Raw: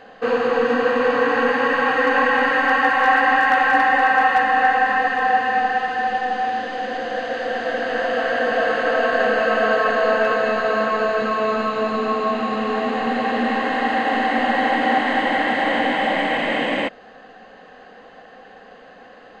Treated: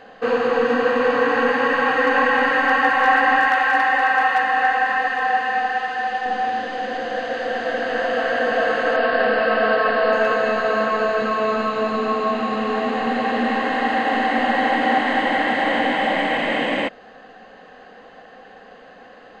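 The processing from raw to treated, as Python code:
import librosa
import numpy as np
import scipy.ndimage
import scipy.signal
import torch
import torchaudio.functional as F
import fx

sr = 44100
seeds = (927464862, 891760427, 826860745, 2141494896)

y = fx.low_shelf(x, sr, hz=450.0, db=-8.5, at=(3.48, 6.26))
y = fx.brickwall_lowpass(y, sr, high_hz=5500.0, at=(8.96, 10.13))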